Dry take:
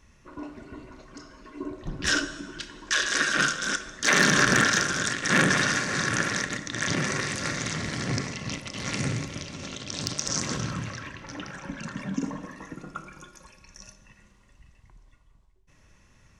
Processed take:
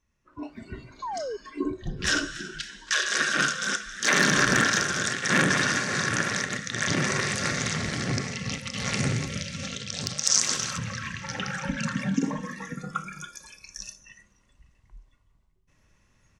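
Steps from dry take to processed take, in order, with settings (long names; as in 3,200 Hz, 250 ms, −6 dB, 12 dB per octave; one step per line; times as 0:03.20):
on a send: echo with shifted repeats 281 ms, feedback 45%, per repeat +60 Hz, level −18.5 dB
on the sum: noise reduction from a noise print of the clip's start 15 dB
in parallel at −2 dB: downward compressor, threshold −34 dBFS, peak gain reduction 17 dB
0:01.02–0:01.37: on the sum: sound drawn into the spectrogram fall 390–1,100 Hz −36 dBFS
automatic gain control gain up to 13 dB
0:10.23–0:10.78: spectral tilt +3.5 dB per octave
level −9 dB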